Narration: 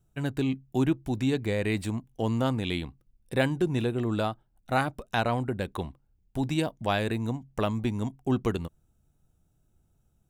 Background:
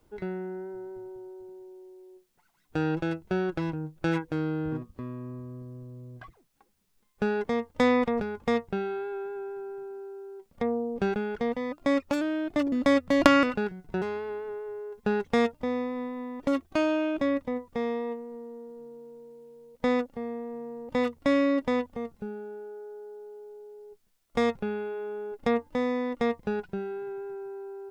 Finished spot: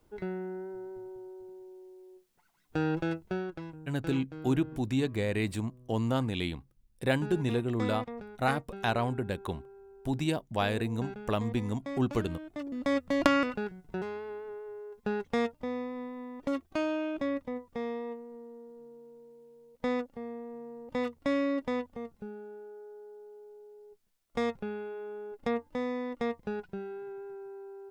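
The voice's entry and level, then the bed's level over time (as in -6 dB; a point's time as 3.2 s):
3.70 s, -2.5 dB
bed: 3.17 s -2 dB
3.73 s -13.5 dB
12.52 s -13.5 dB
12.98 s -5.5 dB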